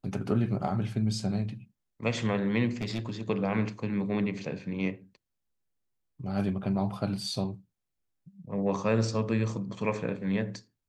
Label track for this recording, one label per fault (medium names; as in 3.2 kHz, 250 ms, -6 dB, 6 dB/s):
2.710000	3.210000	clipped -27.5 dBFS